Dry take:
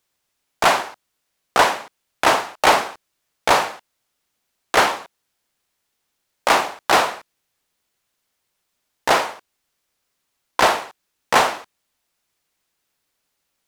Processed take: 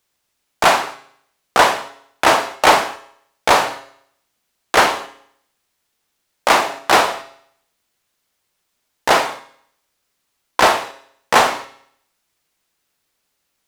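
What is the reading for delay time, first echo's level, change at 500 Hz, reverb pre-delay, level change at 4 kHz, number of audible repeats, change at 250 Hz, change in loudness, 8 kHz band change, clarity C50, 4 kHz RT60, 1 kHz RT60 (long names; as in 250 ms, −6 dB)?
no echo audible, no echo audible, +3.0 dB, 7 ms, +3.0 dB, no echo audible, +3.5 dB, +2.5 dB, +3.0 dB, 14.5 dB, 0.65 s, 0.65 s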